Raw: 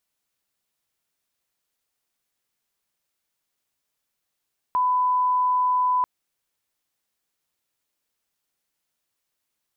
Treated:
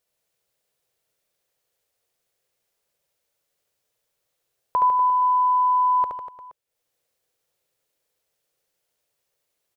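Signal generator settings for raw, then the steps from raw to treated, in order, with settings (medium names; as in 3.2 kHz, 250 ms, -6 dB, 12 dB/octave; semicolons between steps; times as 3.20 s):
line-up tone -18 dBFS 1.29 s
ten-band graphic EQ 125 Hz +5 dB, 250 Hz -7 dB, 500 Hz +12 dB, 1 kHz -3 dB; transient shaper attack +3 dB, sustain -8 dB; on a send: reverse bouncing-ball echo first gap 70 ms, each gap 1.15×, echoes 5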